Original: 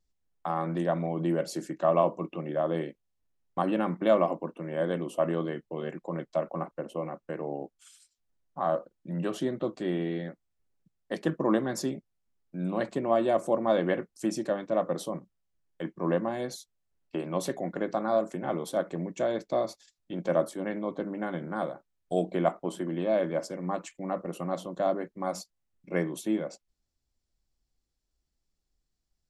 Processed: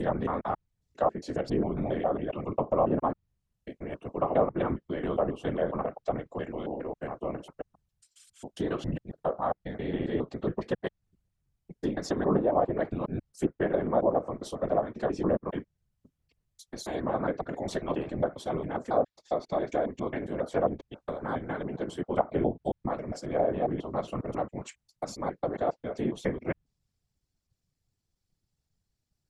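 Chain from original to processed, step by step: slices in reverse order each 0.136 s, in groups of 7; whisperiser; treble ducked by the level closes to 1100 Hz, closed at -21.5 dBFS

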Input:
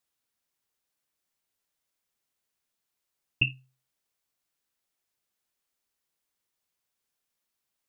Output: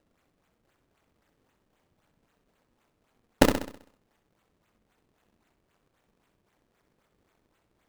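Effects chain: high shelf 2700 Hz +9 dB; decimation with a swept rate 38×, swing 160% 3.8 Hz; ring modulator 130 Hz; flutter echo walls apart 11.1 m, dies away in 0.58 s; gain +5.5 dB

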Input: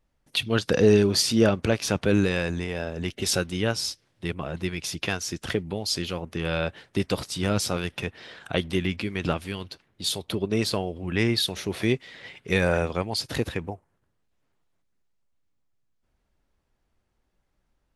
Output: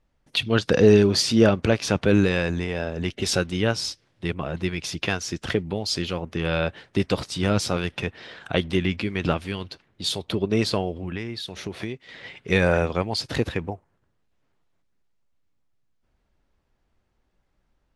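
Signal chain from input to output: 10.93–12.09 compressor 8:1, threshold -31 dBFS, peak gain reduction 14 dB; air absorption 51 m; gain +3 dB

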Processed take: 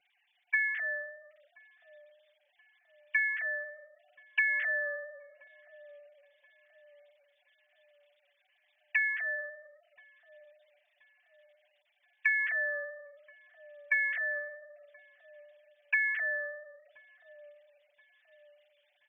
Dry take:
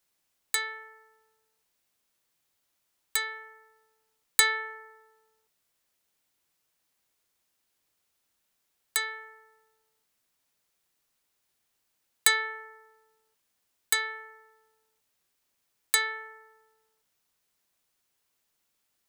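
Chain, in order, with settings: sine-wave speech; band shelf 1100 Hz -14.5 dB 1 oct; comb 6.9 ms, depth 88%; in parallel at +3 dB: limiter -21.5 dBFS, peak gain reduction 11.5 dB; on the sum: compressor 6:1, threshold -34 dBFS, peak gain reduction 20 dB; on a send: dark delay 1.028 s, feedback 44%, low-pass 430 Hz, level -5.5 dB; on the sum: gain +6 dB

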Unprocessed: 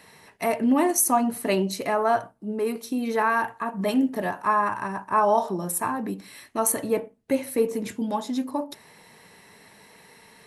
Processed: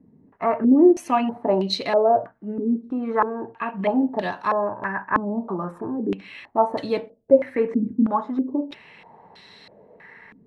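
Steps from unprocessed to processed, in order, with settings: stepped low-pass 3.1 Hz 260–4000 Hz

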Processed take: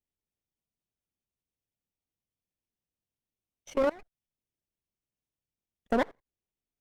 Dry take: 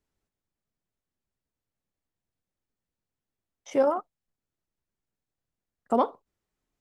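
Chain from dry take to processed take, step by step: minimum comb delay 0.35 ms; level quantiser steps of 24 dB

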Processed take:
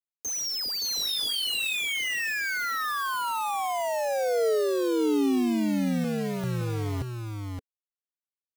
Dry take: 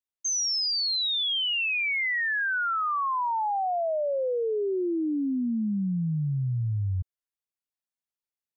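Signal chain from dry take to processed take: 6.04–6.44 tone controls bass -12 dB, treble +12 dB; soft clip -29.5 dBFS, distortion -16 dB; bit-crush 6-bit; small resonant body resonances 270/440 Hz, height 7 dB, ringing for 25 ms; 0.95–1.75 doubler 22 ms -6 dB; echo 0.57 s -4.5 dB

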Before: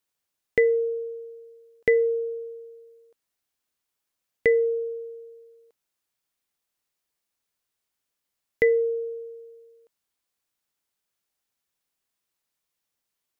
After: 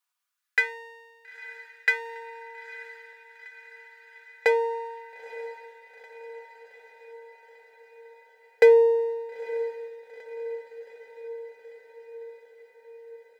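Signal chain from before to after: minimum comb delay 4.1 ms; LFO high-pass sine 0.2 Hz 510–1900 Hz; diffused feedback echo 0.909 s, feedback 66%, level -15 dB

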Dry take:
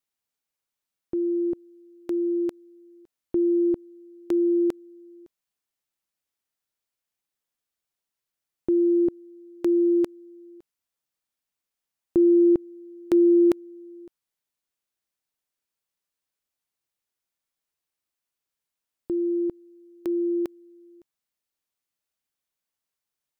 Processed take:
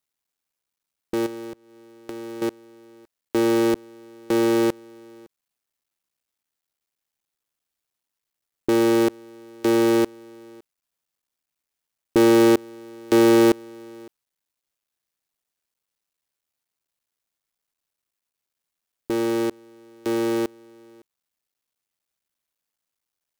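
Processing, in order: cycle switcher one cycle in 3, muted; 1.26–2.42 compressor 5:1, threshold -38 dBFS, peak gain reduction 12.5 dB; gain +4 dB

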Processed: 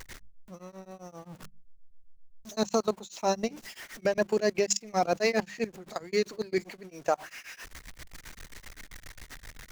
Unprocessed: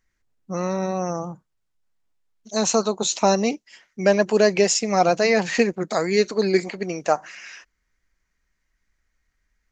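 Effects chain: zero-crossing step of -32.5 dBFS; level quantiser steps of 20 dB; notches 50/100/150/200 Hz; beating tremolo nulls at 7.6 Hz; gain -2.5 dB

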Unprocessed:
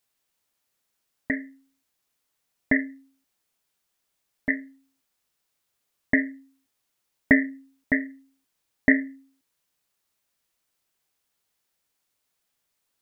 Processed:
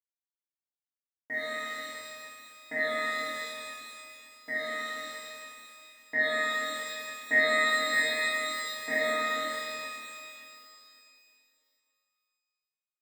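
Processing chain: HPF 400 Hz 12 dB/oct; in parallel at -1.5 dB: compressor, threshold -33 dBFS, peak gain reduction 17 dB; on the sum: resonator bank D#3 fifth, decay 0.43 s; on a send: echo with dull and thin repeats by turns 0.117 s, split 1600 Hz, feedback 72%, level -5.5 dB; on the sum: sample gate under -56.5 dBFS; shimmer reverb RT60 2.7 s, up +12 st, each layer -8 dB, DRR -11 dB

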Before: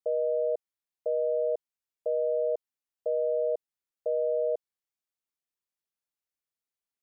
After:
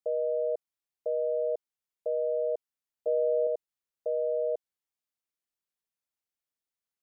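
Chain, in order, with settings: 3.07–3.47 low shelf 330 Hz +10 dB; gain -1.5 dB

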